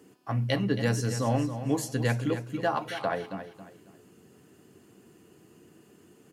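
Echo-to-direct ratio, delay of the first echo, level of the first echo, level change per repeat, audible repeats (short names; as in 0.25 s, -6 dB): -10.5 dB, 0.273 s, -11.0 dB, -11.0 dB, 3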